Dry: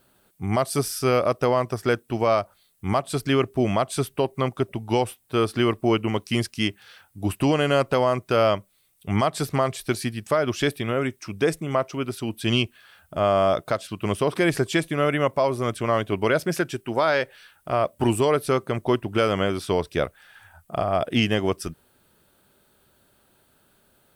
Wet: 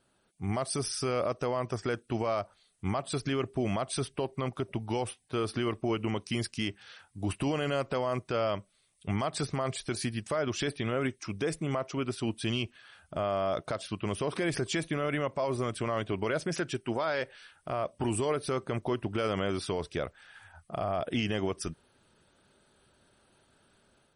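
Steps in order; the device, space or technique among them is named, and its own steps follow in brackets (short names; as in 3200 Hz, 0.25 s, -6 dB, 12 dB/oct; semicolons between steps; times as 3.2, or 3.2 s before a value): low-bitrate web radio (AGC gain up to 6 dB; limiter -13 dBFS, peak gain reduction 8 dB; gain -8 dB; MP3 40 kbps 48000 Hz)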